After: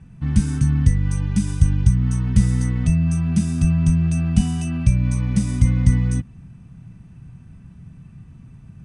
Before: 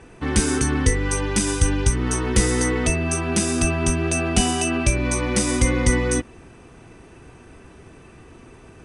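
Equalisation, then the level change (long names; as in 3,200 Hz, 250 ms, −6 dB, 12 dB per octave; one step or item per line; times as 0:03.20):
parametric band 120 Hz +3.5 dB 0.82 octaves
low shelf with overshoot 260 Hz +14 dB, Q 3
−12.5 dB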